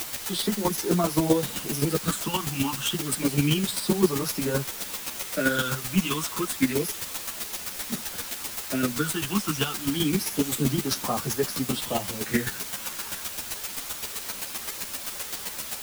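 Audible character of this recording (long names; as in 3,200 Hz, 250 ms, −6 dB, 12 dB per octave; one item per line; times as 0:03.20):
phaser sweep stages 8, 0.29 Hz, lowest notch 560–3,000 Hz
a quantiser's noise floor 6 bits, dither triangular
chopped level 7.7 Hz, depth 60%, duty 15%
a shimmering, thickened sound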